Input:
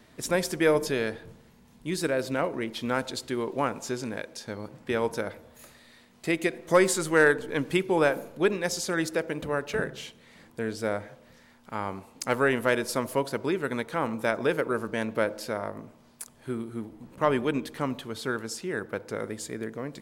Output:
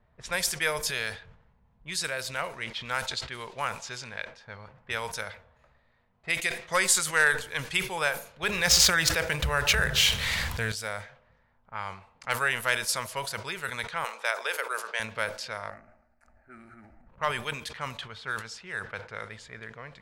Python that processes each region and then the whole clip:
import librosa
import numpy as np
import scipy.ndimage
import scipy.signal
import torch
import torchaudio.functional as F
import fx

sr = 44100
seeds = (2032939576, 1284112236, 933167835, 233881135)

y = fx.chain(x, sr, fx.median_filter(points=5),
    fx.peak_eq(hz=68.0, db=12.5, octaves=1.5),
    fx.env_flatten(amount_pct=70), at=(8.43, 10.72))
y = fx.chain(y, sr, fx.highpass(hz=400.0, slope=24),
    fx.band_squash(depth_pct=40), at=(14.04, 15.0))
y = fx.chain(y, sr, fx.fixed_phaser(hz=680.0, stages=8),
    fx.transient(attack_db=-2, sustain_db=7), at=(15.7, 17.08))
y = fx.env_lowpass(y, sr, base_hz=640.0, full_db=-24.5)
y = fx.tone_stack(y, sr, knobs='10-0-10')
y = fx.sustainer(y, sr, db_per_s=130.0)
y = y * librosa.db_to_amplitude(7.0)